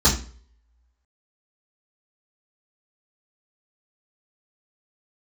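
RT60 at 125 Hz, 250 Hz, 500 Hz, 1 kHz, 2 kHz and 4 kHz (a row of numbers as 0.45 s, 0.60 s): 0.50 s, 0.40 s, 0.50 s, 0.40 s, 0.40 s, 0.35 s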